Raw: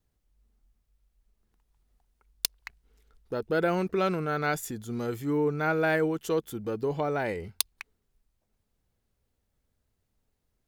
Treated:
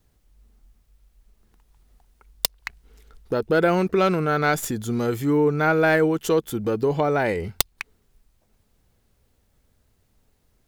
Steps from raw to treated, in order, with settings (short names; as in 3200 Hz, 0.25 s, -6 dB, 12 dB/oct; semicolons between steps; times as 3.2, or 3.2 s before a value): tracing distortion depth 0.13 ms; in parallel at +2 dB: compressor, threshold -38 dBFS, peak gain reduction 15.5 dB; on the sum: gain +5 dB